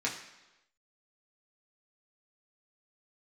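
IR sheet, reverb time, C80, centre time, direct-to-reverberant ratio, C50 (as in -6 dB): 1.0 s, 9.5 dB, 29 ms, -4.0 dB, 7.5 dB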